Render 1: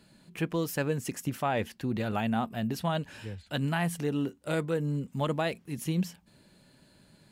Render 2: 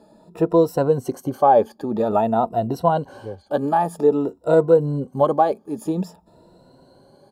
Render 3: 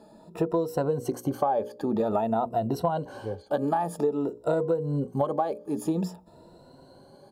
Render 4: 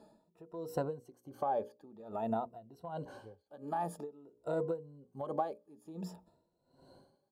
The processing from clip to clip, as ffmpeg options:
ffmpeg -i in.wav -af "afftfilt=real='re*pow(10,13/40*sin(2*PI*(2*log(max(b,1)*sr/1024/100)/log(2)-(0.51)*(pts-256)/sr)))':imag='im*pow(10,13/40*sin(2*PI*(2*log(max(b,1)*sr/1024/100)/log(2)-(0.51)*(pts-256)/sr)))':win_size=1024:overlap=0.75,firequalizer=gain_entry='entry(170,0);entry(410,12);entry(800,13);entry(2100,-15);entry(4200,-3);entry(6100,-6)':delay=0.05:min_phase=1,volume=1.5dB" out.wav
ffmpeg -i in.wav -af "bandreject=frequency=60:width_type=h:width=6,bandreject=frequency=120:width_type=h:width=6,bandreject=frequency=180:width_type=h:width=6,bandreject=frequency=240:width_type=h:width=6,bandreject=frequency=300:width_type=h:width=6,bandreject=frequency=360:width_type=h:width=6,bandreject=frequency=420:width_type=h:width=6,bandreject=frequency=480:width_type=h:width=6,bandreject=frequency=540:width_type=h:width=6,bandreject=frequency=600:width_type=h:width=6,acompressor=threshold=-22dB:ratio=10" out.wav
ffmpeg -i in.wav -af "aeval=exprs='val(0)*pow(10,-22*(0.5-0.5*cos(2*PI*1.3*n/s))/20)':channel_layout=same,volume=-7dB" out.wav

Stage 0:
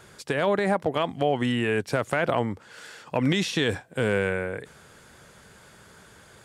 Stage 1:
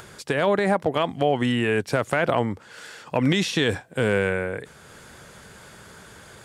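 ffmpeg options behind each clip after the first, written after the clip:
ffmpeg -i in.wav -af "acompressor=mode=upward:threshold=-42dB:ratio=2.5,volume=2.5dB" out.wav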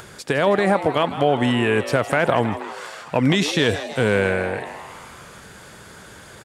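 ffmpeg -i in.wav -filter_complex "[0:a]asplit=8[link_01][link_02][link_03][link_04][link_05][link_06][link_07][link_08];[link_02]adelay=160,afreqshift=140,volume=-13dB[link_09];[link_03]adelay=320,afreqshift=280,volume=-17.2dB[link_10];[link_04]adelay=480,afreqshift=420,volume=-21.3dB[link_11];[link_05]adelay=640,afreqshift=560,volume=-25.5dB[link_12];[link_06]adelay=800,afreqshift=700,volume=-29.6dB[link_13];[link_07]adelay=960,afreqshift=840,volume=-33.8dB[link_14];[link_08]adelay=1120,afreqshift=980,volume=-37.9dB[link_15];[link_01][link_09][link_10][link_11][link_12][link_13][link_14][link_15]amix=inputs=8:normalize=0,volume=3dB" out.wav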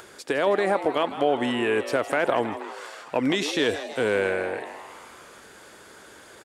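ffmpeg -i in.wav -af "lowshelf=frequency=220:width_type=q:width=1.5:gain=-9,volume=-5dB" out.wav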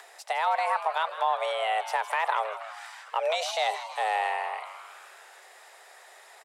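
ffmpeg -i in.wav -af "afreqshift=320,volume=-4dB" out.wav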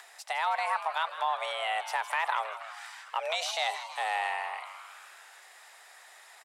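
ffmpeg -i in.wav -af "equalizer=frequency=440:width=1:gain=-11" out.wav

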